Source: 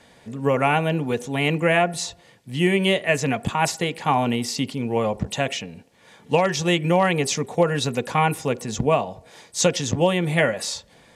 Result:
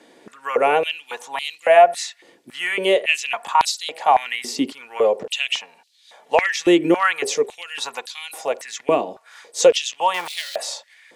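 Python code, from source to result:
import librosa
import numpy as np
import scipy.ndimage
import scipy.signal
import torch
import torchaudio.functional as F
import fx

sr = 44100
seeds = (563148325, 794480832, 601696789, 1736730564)

y = fx.zero_step(x, sr, step_db=-24.5, at=(10.14, 10.56))
y = fx.filter_held_highpass(y, sr, hz=3.6, low_hz=320.0, high_hz=4000.0)
y = F.gain(torch.from_numpy(y), -1.0).numpy()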